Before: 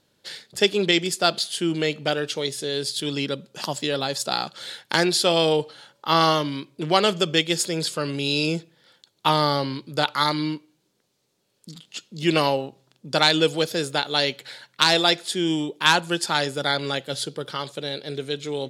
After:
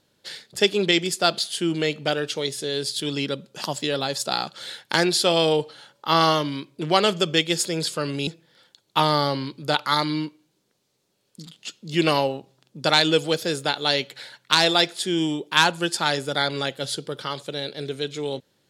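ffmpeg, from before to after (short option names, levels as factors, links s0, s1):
-filter_complex "[0:a]asplit=2[s0][s1];[s0]atrim=end=8.272[s2];[s1]atrim=start=8.558[s3];[s2][s3]acrossfade=d=0.004:c1=hsin:c2=hsin"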